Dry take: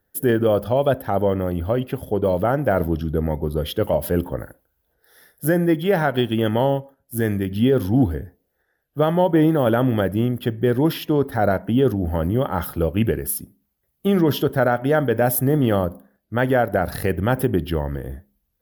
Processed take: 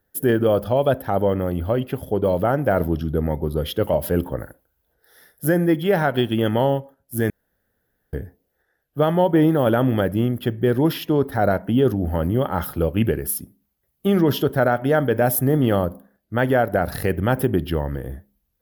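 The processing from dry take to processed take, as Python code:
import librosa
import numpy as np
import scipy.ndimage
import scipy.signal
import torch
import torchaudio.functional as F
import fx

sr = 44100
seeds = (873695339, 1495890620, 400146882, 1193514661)

y = fx.edit(x, sr, fx.room_tone_fill(start_s=7.3, length_s=0.83), tone=tone)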